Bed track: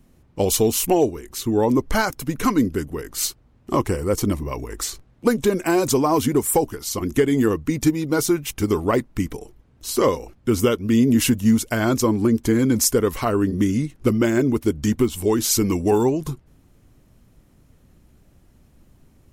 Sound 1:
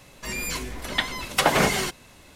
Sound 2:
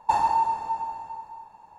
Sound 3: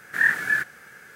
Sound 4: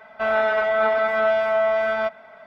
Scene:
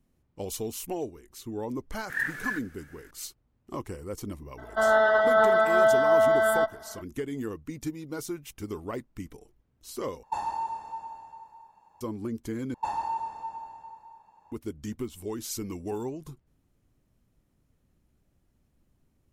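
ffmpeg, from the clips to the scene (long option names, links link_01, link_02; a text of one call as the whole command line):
ffmpeg -i bed.wav -i cue0.wav -i cue1.wav -i cue2.wav -i cue3.wav -filter_complex "[2:a]asplit=2[link_01][link_02];[0:a]volume=-15.5dB[link_03];[4:a]asuperstop=centerf=2400:order=12:qfactor=2.4[link_04];[link_01]highshelf=frequency=6100:gain=4.5[link_05];[link_02]acontrast=36[link_06];[link_03]asplit=3[link_07][link_08][link_09];[link_07]atrim=end=10.234[link_10];[link_05]atrim=end=1.78,asetpts=PTS-STARTPTS,volume=-9.5dB[link_11];[link_08]atrim=start=12.006:end=12.744[link_12];[link_06]atrim=end=1.78,asetpts=PTS-STARTPTS,volume=-14dB[link_13];[link_09]atrim=start=14.516[link_14];[3:a]atrim=end=1.15,asetpts=PTS-STARTPTS,volume=-10dB,afade=type=in:duration=0.004:curve=hsin,afade=type=out:start_time=1.146:duration=0.004:curve=hsin,adelay=1960[link_15];[link_04]atrim=end=2.46,asetpts=PTS-STARTPTS,volume=-0.5dB,afade=type=in:duration=0.02,afade=type=out:start_time=2.44:duration=0.02,adelay=201537S[link_16];[link_10][link_11]acrossfade=duration=0.004:curve1=hsin:curve2=hsin[link_17];[link_17][link_12]acrossfade=duration=0.004:curve1=hsin:curve2=hsin[link_18];[link_18][link_13]acrossfade=duration=0.004:curve1=hsin:curve2=hsin[link_19];[link_19][link_14]acrossfade=duration=0.004:curve1=hsin:curve2=hsin[link_20];[link_20][link_15][link_16]amix=inputs=3:normalize=0" out.wav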